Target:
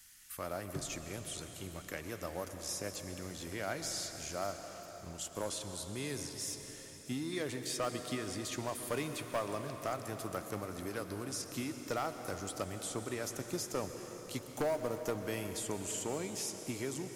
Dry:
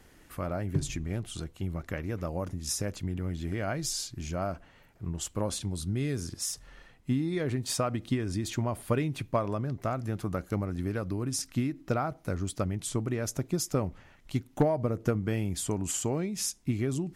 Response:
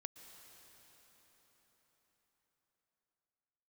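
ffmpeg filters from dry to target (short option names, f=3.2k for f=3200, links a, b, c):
-filter_complex "[0:a]acrossover=split=190|1200|4600[a][b][c][d];[b]aeval=exprs='sgn(val(0))*max(abs(val(0))-0.00251,0)':c=same[e];[a][e][c][d]amix=inputs=4:normalize=0,bass=f=250:g=-12,treble=f=4k:g=13,acrossover=split=3100[f][g];[g]acompressor=threshold=-37dB:ratio=4:attack=1:release=60[h];[f][h]amix=inputs=2:normalize=0,volume=25dB,asoftclip=hard,volume=-25dB[i];[1:a]atrim=start_sample=2205[j];[i][j]afir=irnorm=-1:irlink=0,volume=2dB"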